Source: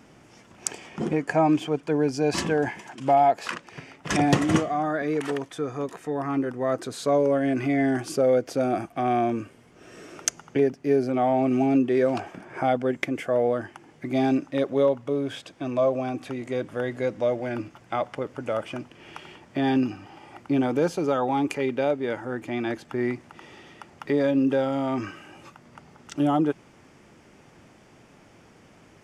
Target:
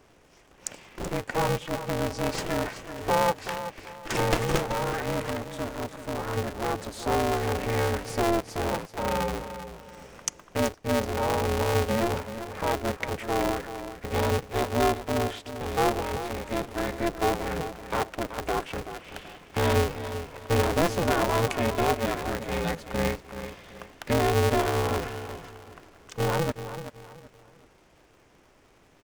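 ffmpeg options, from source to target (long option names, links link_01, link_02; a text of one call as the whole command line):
ffmpeg -i in.wav -filter_complex "[0:a]dynaudnorm=framelen=360:gausssize=21:maxgain=5dB,asplit=2[link_01][link_02];[link_02]aecho=0:1:380|760|1140:0.282|0.0874|0.0271[link_03];[link_01][link_03]amix=inputs=2:normalize=0,aeval=exprs='val(0)*sgn(sin(2*PI*170*n/s))':channel_layout=same,volume=-5.5dB" out.wav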